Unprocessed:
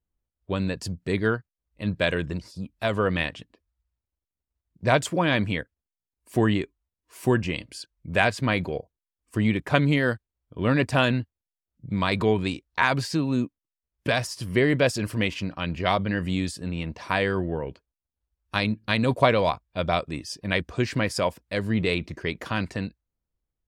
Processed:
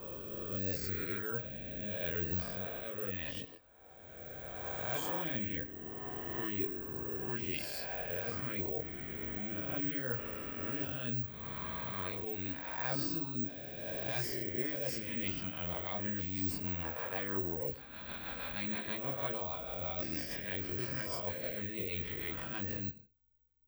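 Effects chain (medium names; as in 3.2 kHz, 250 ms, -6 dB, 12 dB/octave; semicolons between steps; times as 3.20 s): reverse spectral sustain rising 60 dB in 1.45 s; reverse; compression 4:1, threshold -36 dBFS, peak gain reduction 21 dB; reverse; rotary cabinet horn 0.75 Hz, later 6.3 Hz, at 14.17 s; on a send at -16 dB: reverberation RT60 0.25 s, pre-delay 85 ms; on the sum: chorus voices 6, 0.24 Hz, delay 23 ms, depth 2.1 ms; careless resampling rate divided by 2×, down filtered, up zero stuff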